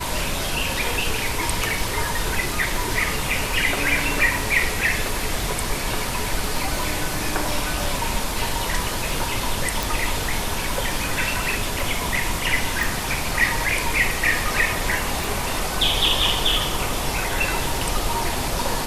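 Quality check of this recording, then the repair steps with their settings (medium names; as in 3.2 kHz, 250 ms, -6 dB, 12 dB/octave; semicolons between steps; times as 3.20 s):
crackle 30 per s -29 dBFS
9.83 s: pop
12.83 s: pop
15.24 s: pop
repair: de-click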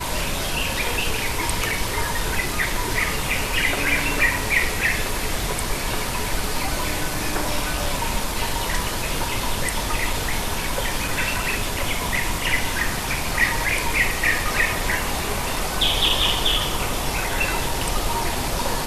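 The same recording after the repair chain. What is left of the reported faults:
nothing left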